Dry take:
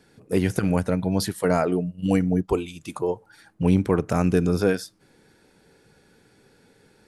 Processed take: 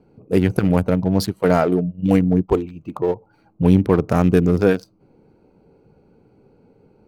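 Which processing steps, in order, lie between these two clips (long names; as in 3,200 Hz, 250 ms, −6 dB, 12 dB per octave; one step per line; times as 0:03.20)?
adaptive Wiener filter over 25 samples
0:02.62–0:03.04: high-shelf EQ 6,200 Hz −11 dB
linearly interpolated sample-rate reduction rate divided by 2×
level +5.5 dB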